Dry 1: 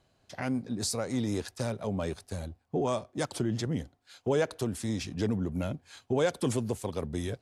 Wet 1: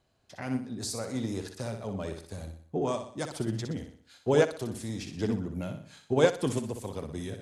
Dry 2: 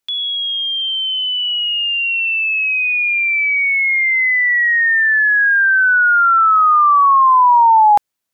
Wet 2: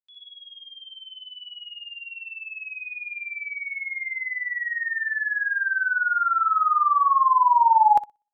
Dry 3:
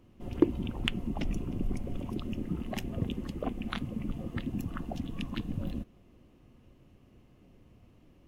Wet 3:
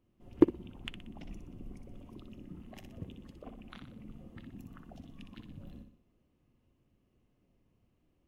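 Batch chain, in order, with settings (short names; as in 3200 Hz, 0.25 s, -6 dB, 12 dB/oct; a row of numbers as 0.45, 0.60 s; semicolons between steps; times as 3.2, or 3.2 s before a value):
flutter echo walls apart 10.5 m, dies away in 0.52 s; upward expander 2.5:1, over -29 dBFS; normalise peaks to -9 dBFS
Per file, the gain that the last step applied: +6.0, -6.5, +1.5 dB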